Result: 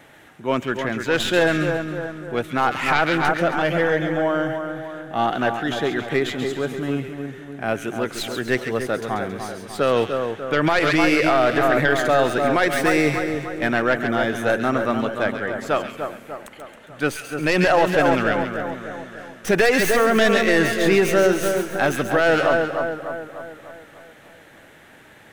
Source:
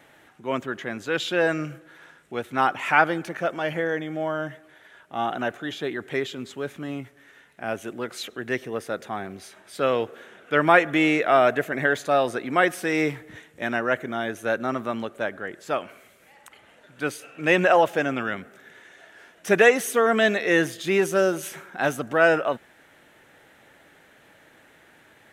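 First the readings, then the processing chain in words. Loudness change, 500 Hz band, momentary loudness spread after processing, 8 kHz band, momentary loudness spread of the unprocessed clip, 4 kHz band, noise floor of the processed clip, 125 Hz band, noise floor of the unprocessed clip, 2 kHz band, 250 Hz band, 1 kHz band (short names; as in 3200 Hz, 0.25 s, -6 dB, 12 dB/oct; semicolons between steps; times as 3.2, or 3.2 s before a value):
+3.5 dB, +4.0 dB, 14 LU, +4.5 dB, 16 LU, +6.0 dB, -48 dBFS, +7.5 dB, -56 dBFS, +3.0 dB, +5.5 dB, +3.0 dB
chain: tracing distortion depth 0.097 ms; low shelf 180 Hz +4.5 dB; split-band echo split 1600 Hz, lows 0.297 s, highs 0.136 s, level -7 dB; limiter -12.5 dBFS, peak gain reduction 10.5 dB; gain +5 dB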